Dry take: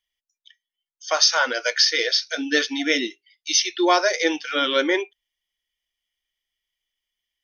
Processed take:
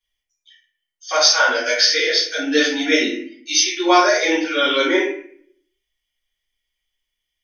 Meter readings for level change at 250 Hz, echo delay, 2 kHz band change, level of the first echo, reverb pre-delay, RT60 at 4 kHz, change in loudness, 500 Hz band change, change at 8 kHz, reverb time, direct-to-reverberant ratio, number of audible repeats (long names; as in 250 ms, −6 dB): +5.0 dB, no echo audible, +4.5 dB, no echo audible, 3 ms, 0.40 s, +4.0 dB, +4.5 dB, +3.5 dB, 0.55 s, −11.0 dB, no echo audible